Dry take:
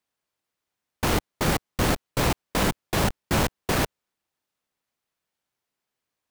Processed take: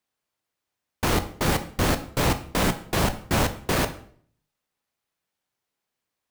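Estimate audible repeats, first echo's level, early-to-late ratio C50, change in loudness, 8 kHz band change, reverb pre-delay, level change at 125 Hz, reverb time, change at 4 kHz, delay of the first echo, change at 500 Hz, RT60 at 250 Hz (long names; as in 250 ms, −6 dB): no echo audible, no echo audible, 13.5 dB, +0.5 dB, +0.5 dB, 10 ms, +1.0 dB, 0.55 s, +0.5 dB, no echo audible, +0.5 dB, 0.65 s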